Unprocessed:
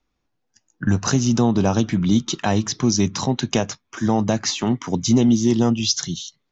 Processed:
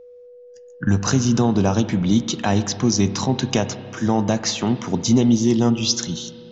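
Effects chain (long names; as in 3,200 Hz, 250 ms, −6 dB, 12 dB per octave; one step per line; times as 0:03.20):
spring reverb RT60 2.2 s, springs 30/58 ms, chirp 45 ms, DRR 11.5 dB
steady tone 490 Hz −41 dBFS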